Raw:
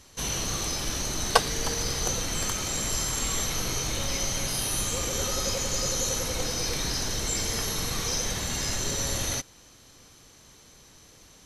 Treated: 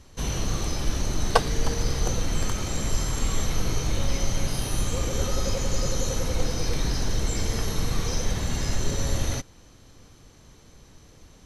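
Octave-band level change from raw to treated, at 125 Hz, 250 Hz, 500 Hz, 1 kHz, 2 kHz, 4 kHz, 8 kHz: +7.0, +4.0, +2.0, 0.0, -2.0, -4.0, -5.5 dB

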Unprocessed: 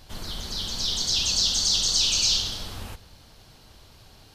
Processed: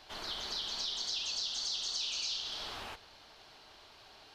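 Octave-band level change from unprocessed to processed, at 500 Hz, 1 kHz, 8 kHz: -8.0, -4.5, -16.5 dB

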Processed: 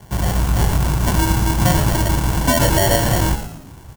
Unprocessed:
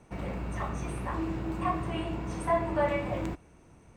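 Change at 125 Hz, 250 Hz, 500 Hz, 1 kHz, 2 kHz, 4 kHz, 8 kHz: +19.0, +12.5, +9.5, +11.0, +15.0, +23.5, +28.0 dB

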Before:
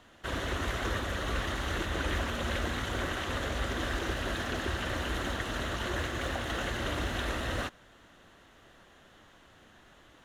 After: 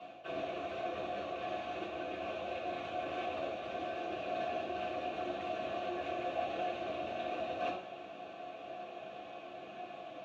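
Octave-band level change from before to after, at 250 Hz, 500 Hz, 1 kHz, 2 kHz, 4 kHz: -7.0, 0.0, -0.5, -11.0, -11.5 dB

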